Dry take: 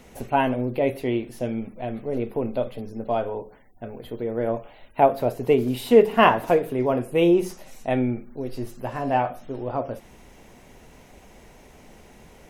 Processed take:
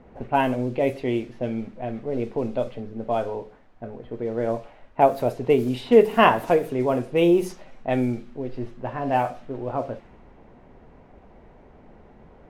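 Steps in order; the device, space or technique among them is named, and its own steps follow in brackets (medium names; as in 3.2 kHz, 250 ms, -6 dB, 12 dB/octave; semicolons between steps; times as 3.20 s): cassette deck with a dynamic noise filter (white noise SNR 30 dB; level-controlled noise filter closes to 1.1 kHz, open at -17 dBFS)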